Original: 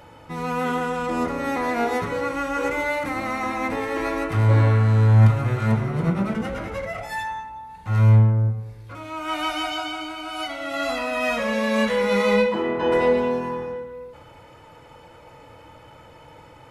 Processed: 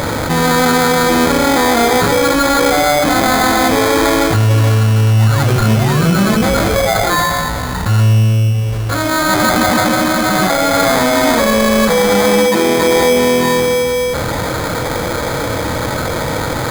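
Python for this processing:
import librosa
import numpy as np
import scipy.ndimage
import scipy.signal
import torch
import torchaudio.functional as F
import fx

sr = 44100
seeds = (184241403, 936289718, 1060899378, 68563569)

p1 = fx.peak_eq(x, sr, hz=6600.0, db=14.0, octaves=0.77)
p2 = fx.notch(p1, sr, hz=880.0, q=12.0)
p3 = fx.rider(p2, sr, range_db=4, speed_s=0.5)
p4 = p2 + F.gain(torch.from_numpy(p3), 2.0).numpy()
p5 = fx.spec_paint(p4, sr, seeds[0], shape='fall', start_s=5.18, length_s=1.18, low_hz=1000.0, high_hz=5000.0, level_db=-28.0)
p6 = fx.sample_hold(p5, sr, seeds[1], rate_hz=2800.0, jitter_pct=0)
p7 = fx.env_flatten(p6, sr, amount_pct=70)
y = F.gain(torch.from_numpy(p7), -3.5).numpy()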